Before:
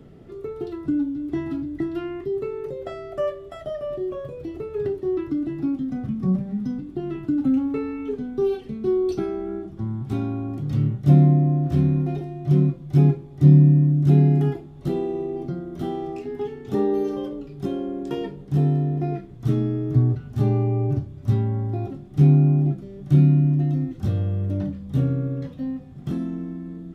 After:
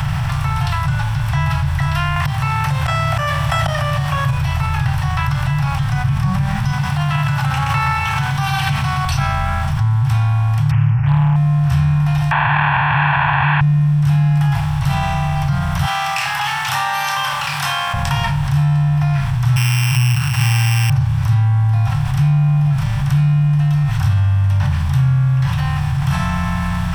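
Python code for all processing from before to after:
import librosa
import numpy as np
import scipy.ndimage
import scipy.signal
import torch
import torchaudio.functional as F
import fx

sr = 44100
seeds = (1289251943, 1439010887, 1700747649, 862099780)

y = fx.chain(x, sr, fx.highpass(hz=92.0, slope=12),
    fx.auto_swell(attack_ms=308.0),
    fx.env_flatten(amount_pct=70), at=(2.16, 4.31))
y = fx.chain(y, sr, fx.highpass(hz=150.0, slope=12),
    fx.echo_single(ms=124, db=-5.0),
    fx.sustainer(db_per_s=36.0), at=(6.71, 9.05))
y = fx.chain(y, sr, fx.resample_bad(factor=8, down='none', up='filtered'),
    fx.doppler_dist(depth_ms=0.71), at=(10.71, 11.36))
y = fx.chain(y, sr, fx.delta_mod(bps=16000, step_db=-15.0),
    fx.bandpass_q(hz=1200.0, q=1.2),
    fx.comb(ms=1.2, depth=0.86), at=(12.31, 13.61))
y = fx.chain(y, sr, fx.highpass(hz=1100.0, slope=12),
    fx.room_flutter(wall_m=5.1, rt60_s=0.21), at=(15.85, 17.94))
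y = fx.chain(y, sr, fx.sample_sort(block=16),
    fx.highpass(hz=170.0, slope=12),
    fx.peak_eq(hz=640.0, db=-13.5, octaves=0.31), at=(19.56, 20.9))
y = fx.bin_compress(y, sr, power=0.6)
y = scipy.signal.sosfilt(scipy.signal.cheby1(3, 1.0, [130.0, 860.0], 'bandstop', fs=sr, output='sos'), y)
y = fx.env_flatten(y, sr, amount_pct=70)
y = F.gain(torch.from_numpy(y), 3.0).numpy()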